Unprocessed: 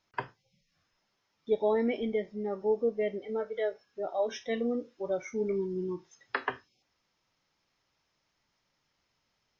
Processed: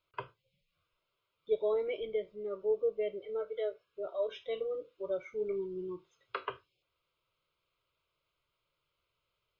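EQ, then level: fixed phaser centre 1200 Hz, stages 8; -2.0 dB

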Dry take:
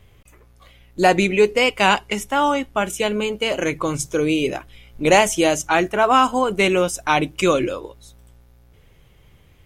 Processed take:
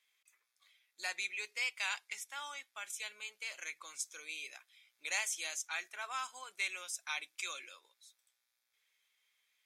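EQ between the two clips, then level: band-pass 2500 Hz, Q 0.8; differentiator; notch 2900 Hz, Q 6; -4.5 dB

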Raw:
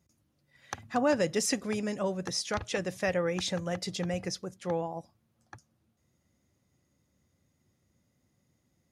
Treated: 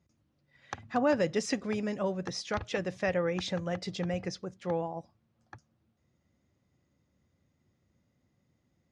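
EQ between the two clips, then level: air absorption 110 m; 0.0 dB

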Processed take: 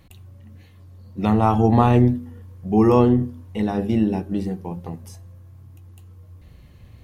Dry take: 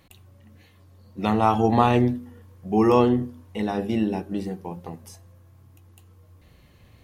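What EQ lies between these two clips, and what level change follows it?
low shelf 200 Hz +10 dB; dynamic EQ 3600 Hz, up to -4 dB, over -37 dBFS, Q 0.81; 0.0 dB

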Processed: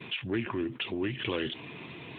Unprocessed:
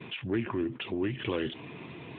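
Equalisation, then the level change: high shelf 2200 Hz +9 dB; -1.5 dB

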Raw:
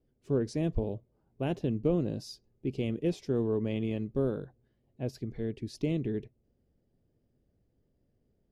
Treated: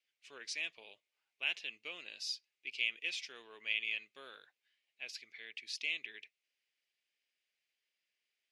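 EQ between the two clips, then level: ladder band-pass 2700 Hz, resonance 55%; high shelf 3200 Hz +10 dB; +14.5 dB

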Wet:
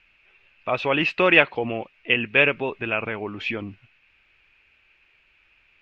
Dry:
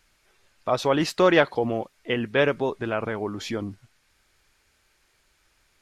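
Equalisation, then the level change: synth low-pass 2600 Hz, resonance Q 8.6; -2.0 dB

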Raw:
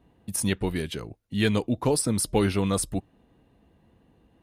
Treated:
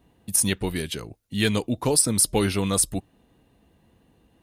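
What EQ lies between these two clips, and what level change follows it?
high shelf 3500 Hz +9.5 dB; 0.0 dB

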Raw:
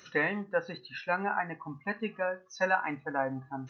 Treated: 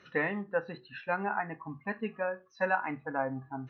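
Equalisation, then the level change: air absorption 290 m; 0.0 dB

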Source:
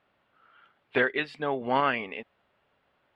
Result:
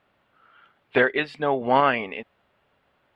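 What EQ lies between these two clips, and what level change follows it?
low shelf 190 Hz +3 dB; dynamic EQ 680 Hz, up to +4 dB, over -38 dBFS, Q 1.2; +3.5 dB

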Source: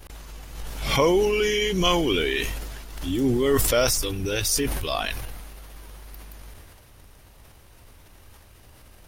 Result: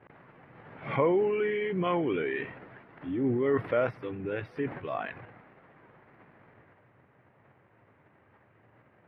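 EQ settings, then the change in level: elliptic band-pass 120–2000 Hz, stop band 50 dB; -5.0 dB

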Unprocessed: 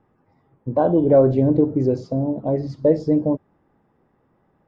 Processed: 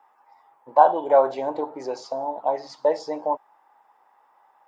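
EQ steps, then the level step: resonant high-pass 870 Hz, resonance Q 4.9; high shelf 2400 Hz +9.5 dB; 0.0 dB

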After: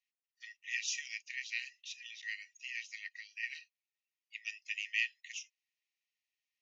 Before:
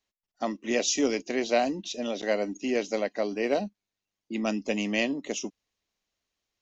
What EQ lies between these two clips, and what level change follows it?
rippled Chebyshev high-pass 1800 Hz, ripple 6 dB; air absorption 92 m; high shelf 5700 Hz -11 dB; +2.0 dB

